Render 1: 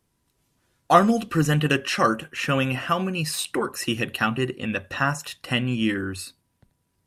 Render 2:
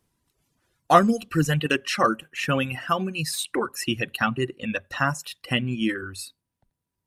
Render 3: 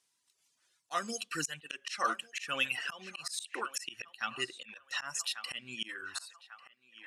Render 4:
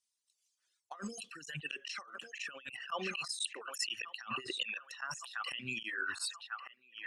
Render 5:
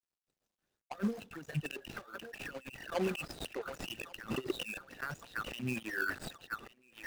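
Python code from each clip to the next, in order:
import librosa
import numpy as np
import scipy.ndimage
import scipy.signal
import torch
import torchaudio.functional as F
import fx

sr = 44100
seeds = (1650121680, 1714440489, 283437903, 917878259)

y1 = fx.dereverb_blind(x, sr, rt60_s=1.8)
y2 = fx.weighting(y1, sr, curve='ITU-R 468')
y2 = fx.echo_banded(y2, sr, ms=1145, feedback_pct=52, hz=1200.0, wet_db=-16.5)
y2 = fx.auto_swell(y2, sr, attack_ms=227.0)
y2 = y2 * librosa.db_to_amplitude(-8.0)
y3 = fx.envelope_sharpen(y2, sr, power=1.5)
y3 = fx.over_compress(y3, sr, threshold_db=-46.0, ratio=-1.0)
y3 = fx.band_widen(y3, sr, depth_pct=70)
y3 = y3 * librosa.db_to_amplitude(3.0)
y4 = scipy.signal.medfilt(y3, 41)
y4 = y4 * librosa.db_to_amplitude(10.5)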